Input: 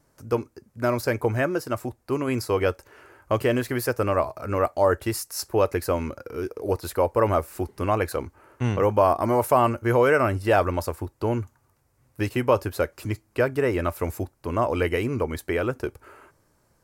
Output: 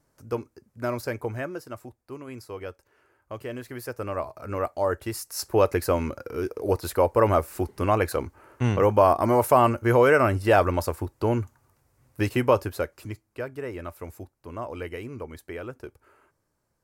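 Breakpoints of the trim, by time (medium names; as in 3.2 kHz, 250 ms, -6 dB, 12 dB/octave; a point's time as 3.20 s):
0.95 s -5 dB
2.25 s -14 dB
3.33 s -14 dB
4.47 s -5 dB
5.12 s -5 dB
5.52 s +1 dB
12.44 s +1 dB
13.39 s -11 dB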